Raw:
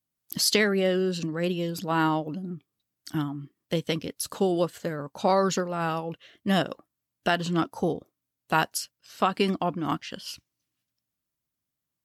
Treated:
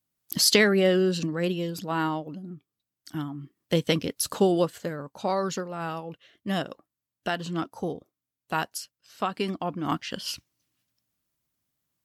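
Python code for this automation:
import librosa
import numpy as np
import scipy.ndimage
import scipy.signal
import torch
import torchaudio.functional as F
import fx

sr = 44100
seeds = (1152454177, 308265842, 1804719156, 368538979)

y = fx.gain(x, sr, db=fx.line((1.05, 3.0), (2.23, -4.5), (3.14, -4.5), (3.8, 4.0), (4.35, 4.0), (5.24, -4.5), (9.58, -4.5), (10.21, 5.0)))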